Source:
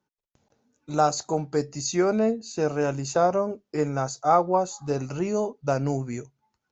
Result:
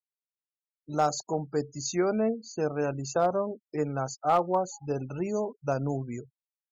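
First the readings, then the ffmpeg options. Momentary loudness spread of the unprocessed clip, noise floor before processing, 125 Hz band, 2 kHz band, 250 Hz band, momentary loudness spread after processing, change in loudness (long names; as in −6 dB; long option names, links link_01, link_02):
8 LU, −82 dBFS, −4.0 dB, −4.5 dB, −4.0 dB, 8 LU, −4.0 dB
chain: -af "afftfilt=real='re*gte(hypot(re,im),0.0158)':imag='im*gte(hypot(re,im),0.0158)':win_size=1024:overlap=0.75,volume=11.5dB,asoftclip=hard,volume=-11.5dB,volume=-4dB"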